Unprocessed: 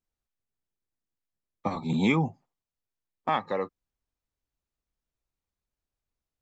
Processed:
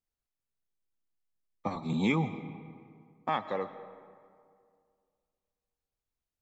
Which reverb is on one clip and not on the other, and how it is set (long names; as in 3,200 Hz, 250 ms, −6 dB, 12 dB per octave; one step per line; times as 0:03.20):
comb and all-pass reverb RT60 2.2 s, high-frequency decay 0.55×, pre-delay 75 ms, DRR 12.5 dB
level −4 dB